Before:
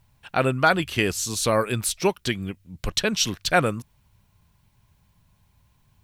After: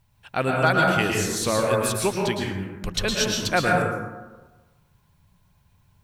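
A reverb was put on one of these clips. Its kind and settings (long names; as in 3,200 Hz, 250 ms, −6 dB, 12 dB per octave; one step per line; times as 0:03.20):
dense smooth reverb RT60 1.2 s, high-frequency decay 0.4×, pre-delay 100 ms, DRR −1.5 dB
level −3 dB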